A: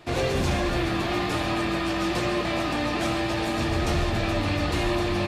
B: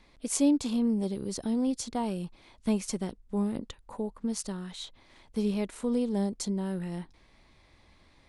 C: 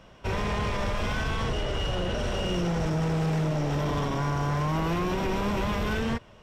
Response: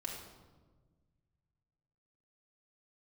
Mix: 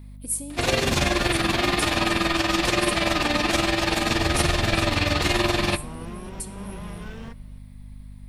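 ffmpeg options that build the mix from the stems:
-filter_complex "[0:a]lowpass=frequency=2200:poles=1,tremolo=f=21:d=0.667,crystalizer=i=8:c=0,adelay=500,volume=2.5dB,asplit=2[link_01][link_02];[link_02]volume=-16dB[link_03];[1:a]asubboost=boost=8.5:cutoff=100,acompressor=threshold=-35dB:ratio=12,aexciter=amount=13.9:drive=4.3:freq=9000,volume=-5dB,asplit=3[link_04][link_05][link_06];[link_05]volume=-3.5dB[link_07];[2:a]adelay=1150,volume=-11.5dB[link_08];[link_06]apad=whole_len=334276[link_09];[link_08][link_09]sidechaincompress=threshold=-37dB:ratio=8:attack=24:release=435[link_10];[3:a]atrim=start_sample=2205[link_11];[link_03][link_07]amix=inputs=2:normalize=0[link_12];[link_12][link_11]afir=irnorm=-1:irlink=0[link_13];[link_01][link_04][link_10][link_13]amix=inputs=4:normalize=0,aeval=exprs='val(0)+0.01*(sin(2*PI*50*n/s)+sin(2*PI*2*50*n/s)/2+sin(2*PI*3*50*n/s)/3+sin(2*PI*4*50*n/s)/4+sin(2*PI*5*50*n/s)/5)':channel_layout=same"

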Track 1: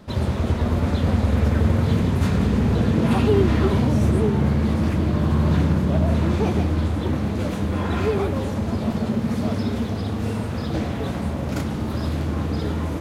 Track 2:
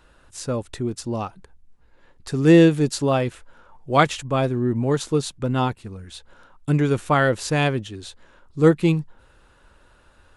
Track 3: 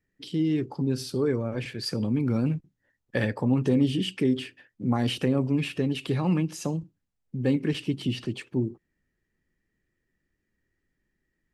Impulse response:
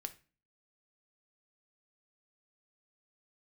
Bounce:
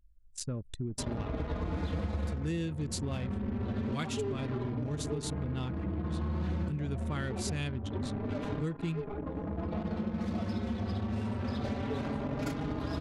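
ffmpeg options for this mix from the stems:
-filter_complex "[0:a]equalizer=frequency=130:width_type=o:width=0.59:gain=-5.5,asplit=2[link_01][link_02];[link_02]adelay=4.5,afreqshift=0.26[link_03];[link_01][link_03]amix=inputs=2:normalize=1,adelay=900,volume=2dB,asplit=2[link_04][link_05];[link_05]volume=-18dB[link_06];[1:a]equalizer=frequency=720:width=0.46:gain=-15,volume=-3.5dB,asplit=3[link_07][link_08][link_09];[link_08]volume=-8.5dB[link_10];[2:a]asplit=3[link_11][link_12][link_13];[link_11]bandpass=frequency=300:width_type=q:width=8,volume=0dB[link_14];[link_12]bandpass=frequency=870:width_type=q:width=8,volume=-6dB[link_15];[link_13]bandpass=frequency=2240:width_type=q:width=8,volume=-9dB[link_16];[link_14][link_15][link_16]amix=inputs=3:normalize=0,adelay=1300,volume=-14.5dB[link_17];[link_09]apad=whole_len=613592[link_18];[link_04][link_18]sidechaincompress=threshold=-37dB:ratio=12:attack=49:release=1300[link_19];[3:a]atrim=start_sample=2205[link_20];[link_06][link_10]amix=inputs=2:normalize=0[link_21];[link_21][link_20]afir=irnorm=-1:irlink=0[link_22];[link_19][link_07][link_17][link_22]amix=inputs=4:normalize=0,anlmdn=2.51,acompressor=threshold=-31dB:ratio=6"

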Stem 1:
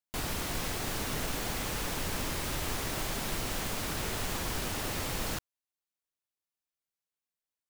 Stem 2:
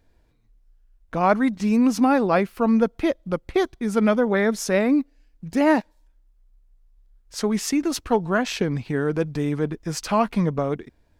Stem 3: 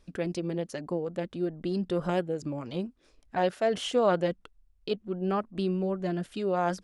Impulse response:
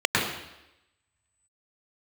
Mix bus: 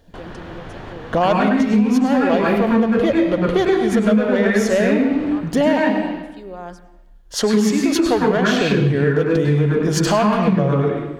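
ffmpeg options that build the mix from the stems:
-filter_complex "[0:a]lowpass=2100,volume=1dB,asplit=2[link_01][link_02];[link_02]volume=-20dB[link_03];[1:a]asoftclip=type=hard:threshold=-15dB,volume=1dB,asplit=2[link_04][link_05];[link_05]volume=-6dB[link_06];[2:a]acrusher=bits=10:mix=0:aa=0.000001,volume=-13.5dB,asplit=3[link_07][link_08][link_09];[link_08]volume=-22dB[link_10];[link_09]apad=whole_len=339380[link_11];[link_01][link_11]sidechaincompress=threshold=-42dB:ratio=8:attack=10:release=535[link_12];[link_04][link_07]amix=inputs=2:normalize=0,acontrast=67,alimiter=limit=-13dB:level=0:latency=1:release=134,volume=0dB[link_13];[3:a]atrim=start_sample=2205[link_14];[link_03][link_06][link_10]amix=inputs=3:normalize=0[link_15];[link_15][link_14]afir=irnorm=-1:irlink=0[link_16];[link_12][link_13][link_16]amix=inputs=3:normalize=0,acompressor=threshold=-13dB:ratio=6"

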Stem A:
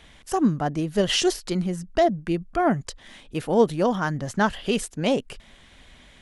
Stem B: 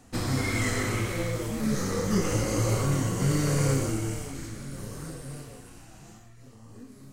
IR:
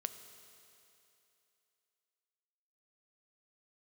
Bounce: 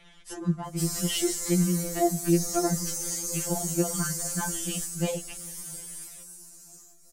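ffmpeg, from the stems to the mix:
-filter_complex "[0:a]acrossover=split=370[link_01][link_02];[link_02]acompressor=threshold=-27dB:ratio=6[link_03];[link_01][link_03]amix=inputs=2:normalize=0,volume=-5dB,asplit=2[link_04][link_05];[link_05]volume=-6dB[link_06];[1:a]aexciter=amount=7.3:drive=8:freq=4700,alimiter=limit=-9.5dB:level=0:latency=1:release=132,adelay=650,volume=-10dB[link_07];[2:a]atrim=start_sample=2205[link_08];[link_06][link_08]afir=irnorm=-1:irlink=0[link_09];[link_04][link_07][link_09]amix=inputs=3:normalize=0,afftfilt=real='re*2.83*eq(mod(b,8),0)':imag='im*2.83*eq(mod(b,8),0)':win_size=2048:overlap=0.75"

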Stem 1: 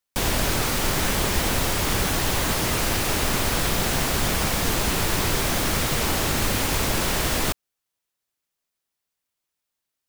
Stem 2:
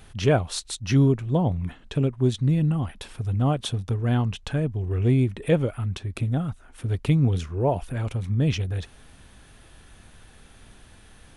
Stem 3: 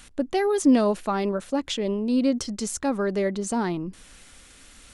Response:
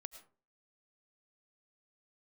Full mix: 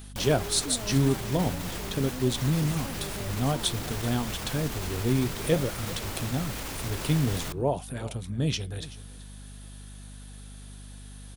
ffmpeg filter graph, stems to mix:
-filter_complex "[0:a]alimiter=limit=-17.5dB:level=0:latency=1,volume=-5dB,asplit=2[link_01][link_02];[link_02]volume=-19.5dB[link_03];[1:a]flanger=delay=2.8:depth=9.9:regen=-81:speed=0.49:shape=triangular,aexciter=amount=2.6:drive=5.4:freq=3400,highpass=130,volume=1dB,asplit=2[link_04][link_05];[link_05]volume=-18.5dB[link_06];[2:a]volume=-11dB[link_07];[link_01][link_07]amix=inputs=2:normalize=0,alimiter=level_in=3.5dB:limit=-24dB:level=0:latency=1,volume=-3.5dB,volume=0dB[link_08];[3:a]atrim=start_sample=2205[link_09];[link_03][link_09]afir=irnorm=-1:irlink=0[link_10];[link_06]aecho=0:1:381:1[link_11];[link_04][link_08][link_10][link_11]amix=inputs=4:normalize=0,aeval=exprs='val(0)+0.00708*(sin(2*PI*50*n/s)+sin(2*PI*2*50*n/s)/2+sin(2*PI*3*50*n/s)/3+sin(2*PI*4*50*n/s)/4+sin(2*PI*5*50*n/s)/5)':channel_layout=same"

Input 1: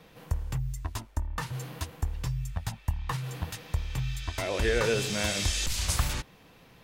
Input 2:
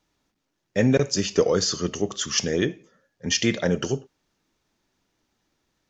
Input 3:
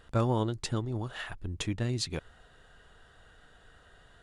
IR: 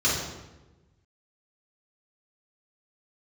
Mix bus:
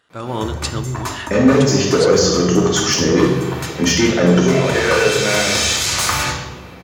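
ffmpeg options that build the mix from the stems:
-filter_complex "[0:a]acrossover=split=450[link_01][link_02];[link_01]acompressor=threshold=-53dB:ratio=1.5[link_03];[link_03][link_02]amix=inputs=2:normalize=0,aeval=exprs='0.0596*(abs(mod(val(0)/0.0596+3,4)-2)-1)':channel_layout=same,adelay=100,volume=3dB,asplit=2[link_04][link_05];[link_05]volume=-14dB[link_06];[1:a]asoftclip=type=hard:threshold=-18dB,adelay=550,volume=2dB,asplit=2[link_07][link_08];[link_08]volume=-16dB[link_09];[2:a]tiltshelf=frequency=1400:gain=-5.5,volume=-2.5dB,asplit=3[link_10][link_11][link_12];[link_11]volume=-23.5dB[link_13];[link_12]apad=whole_len=305742[link_14];[link_04][link_14]sidechaincompress=threshold=-37dB:ratio=8:attack=16:release=719[link_15];[link_15][link_07]amix=inputs=2:normalize=0,bandreject=frequency=2900:width=12,acompressor=threshold=-25dB:ratio=6,volume=0dB[link_16];[3:a]atrim=start_sample=2205[link_17];[link_06][link_09][link_13]amix=inputs=3:normalize=0[link_18];[link_18][link_17]afir=irnorm=-1:irlink=0[link_19];[link_10][link_16][link_19]amix=inputs=3:normalize=0,highpass=140,highshelf=frequency=5500:gain=-5.5,dynaudnorm=framelen=100:gausssize=5:maxgain=13dB"

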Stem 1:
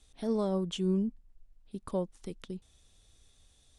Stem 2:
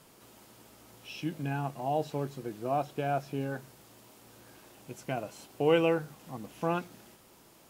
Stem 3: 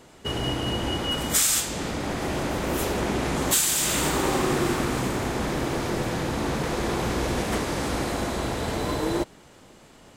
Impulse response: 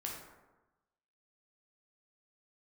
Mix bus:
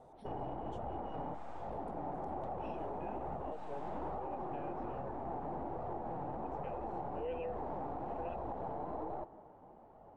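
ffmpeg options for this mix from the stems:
-filter_complex "[0:a]acompressor=threshold=-39dB:ratio=6,volume=-17.5dB[link_01];[1:a]asplit=3[link_02][link_03][link_04];[link_02]bandpass=frequency=530:width_type=q:width=8,volume=0dB[link_05];[link_03]bandpass=frequency=1840:width_type=q:width=8,volume=-6dB[link_06];[link_04]bandpass=frequency=2480:width_type=q:width=8,volume=-9dB[link_07];[link_05][link_06][link_07]amix=inputs=3:normalize=0,adelay=1550,volume=-2.5dB[link_08];[2:a]aeval=exprs='(tanh(35.5*val(0)+0.7)-tanh(0.7))/35.5':channel_layout=same,lowpass=frequency=800:width_type=q:width=4.2,flanger=delay=1.5:depth=5.5:regen=-36:speed=1.2:shape=sinusoidal,volume=-4.5dB,asplit=2[link_09][link_10];[link_10]volume=-12dB[link_11];[3:a]atrim=start_sample=2205[link_12];[link_11][link_12]afir=irnorm=-1:irlink=0[link_13];[link_01][link_08][link_09][link_13]amix=inputs=4:normalize=0,alimiter=level_in=8dB:limit=-24dB:level=0:latency=1:release=163,volume=-8dB"

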